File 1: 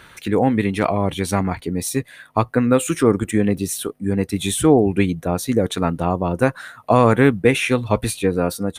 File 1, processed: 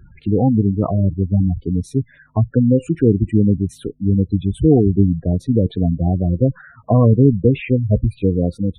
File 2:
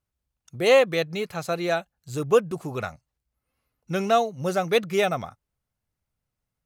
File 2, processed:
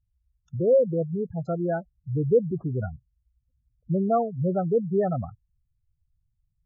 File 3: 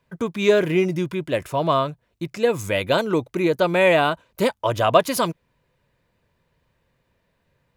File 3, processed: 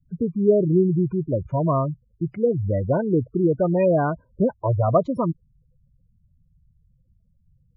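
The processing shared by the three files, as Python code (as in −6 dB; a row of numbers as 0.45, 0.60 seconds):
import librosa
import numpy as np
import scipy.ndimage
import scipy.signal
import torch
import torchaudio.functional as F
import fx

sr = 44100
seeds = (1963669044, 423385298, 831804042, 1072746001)

y = fx.riaa(x, sr, side='playback')
y = fx.spec_gate(y, sr, threshold_db=-15, keep='strong')
y = y * librosa.db_to_amplitude(-4.0)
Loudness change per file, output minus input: +2.0, −1.5, −1.0 LU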